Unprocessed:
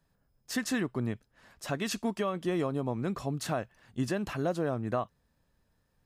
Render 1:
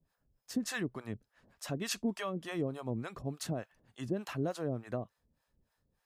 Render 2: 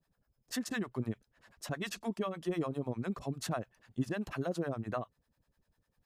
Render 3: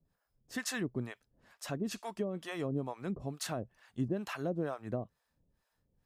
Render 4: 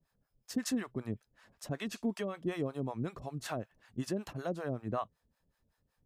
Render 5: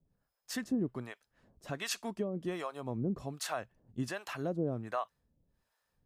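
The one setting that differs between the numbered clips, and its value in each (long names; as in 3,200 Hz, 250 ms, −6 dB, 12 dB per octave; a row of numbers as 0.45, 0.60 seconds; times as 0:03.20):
two-band tremolo in antiphase, speed: 3.4, 10, 2.2, 5.3, 1.3 Hertz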